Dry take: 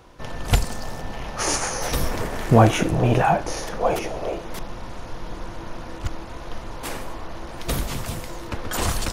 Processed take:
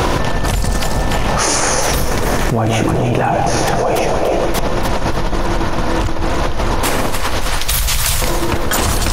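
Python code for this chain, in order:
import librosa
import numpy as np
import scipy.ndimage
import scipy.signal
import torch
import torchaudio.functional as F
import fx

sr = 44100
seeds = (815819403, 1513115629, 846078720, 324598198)

y = fx.tone_stack(x, sr, knobs='10-0-10', at=(7.06, 8.22))
y = fx.echo_alternate(y, sr, ms=145, hz=940.0, feedback_pct=71, wet_db=-8.5)
y = fx.env_flatten(y, sr, amount_pct=100)
y = y * 10.0 ** (-4.0 / 20.0)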